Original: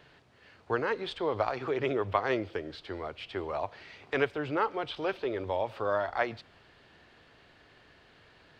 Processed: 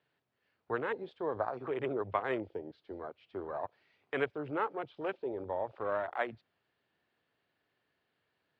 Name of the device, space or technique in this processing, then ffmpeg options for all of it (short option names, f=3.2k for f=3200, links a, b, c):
over-cleaned archive recording: -af "highpass=110,lowpass=5.2k,afwtdn=0.0141,volume=-4.5dB"